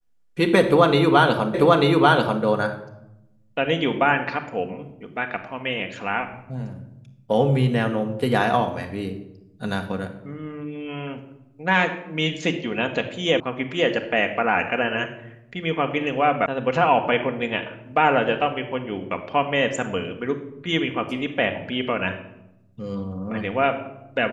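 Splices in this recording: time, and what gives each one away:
0:01.54: the same again, the last 0.89 s
0:13.40: cut off before it has died away
0:16.46: cut off before it has died away

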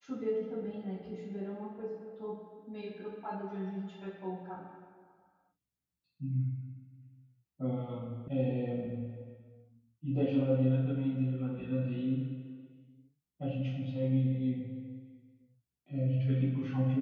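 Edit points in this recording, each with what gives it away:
0:08.28: cut off before it has died away

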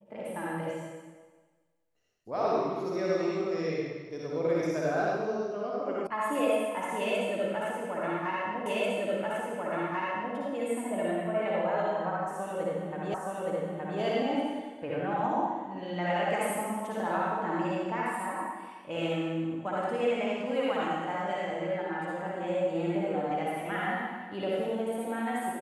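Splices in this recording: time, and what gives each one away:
0:06.07: cut off before it has died away
0:08.66: the same again, the last 1.69 s
0:13.14: the same again, the last 0.87 s

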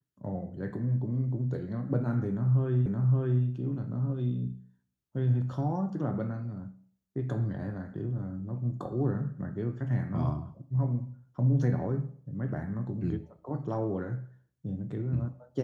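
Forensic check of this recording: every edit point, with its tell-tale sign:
0:02.86: the same again, the last 0.57 s

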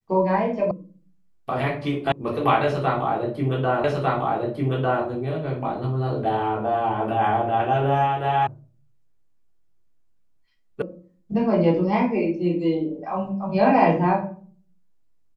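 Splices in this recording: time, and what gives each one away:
0:00.71: cut off before it has died away
0:02.12: cut off before it has died away
0:03.84: the same again, the last 1.2 s
0:08.47: cut off before it has died away
0:10.82: cut off before it has died away

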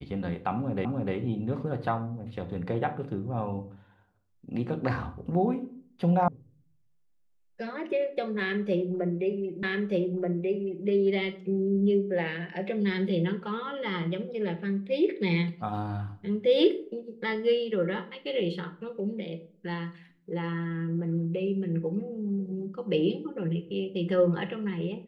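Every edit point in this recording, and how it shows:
0:00.85: the same again, the last 0.3 s
0:06.28: cut off before it has died away
0:09.63: the same again, the last 1.23 s

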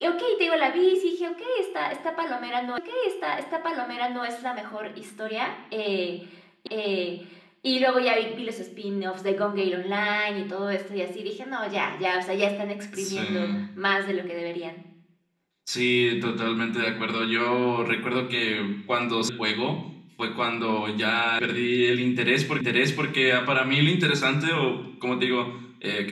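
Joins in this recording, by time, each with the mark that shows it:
0:02.78: the same again, the last 1.47 s
0:06.67: the same again, the last 0.99 s
0:19.29: cut off before it has died away
0:21.39: cut off before it has died away
0:22.61: the same again, the last 0.48 s

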